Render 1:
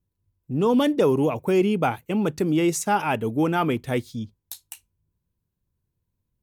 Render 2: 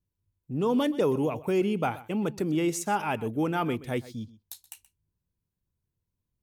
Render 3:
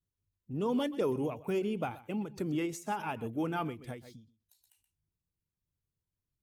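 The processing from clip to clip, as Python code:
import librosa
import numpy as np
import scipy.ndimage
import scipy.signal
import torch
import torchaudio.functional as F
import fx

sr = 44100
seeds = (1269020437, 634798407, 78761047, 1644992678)

y1 = x + 10.0 ** (-18.0 / 20.0) * np.pad(x, (int(126 * sr / 1000.0), 0))[:len(x)]
y1 = y1 * librosa.db_to_amplitude(-5.5)
y2 = fx.spec_quant(y1, sr, step_db=15)
y2 = fx.vibrato(y2, sr, rate_hz=0.72, depth_cents=37.0)
y2 = fx.end_taper(y2, sr, db_per_s=140.0)
y2 = y2 * librosa.db_to_amplitude(-5.5)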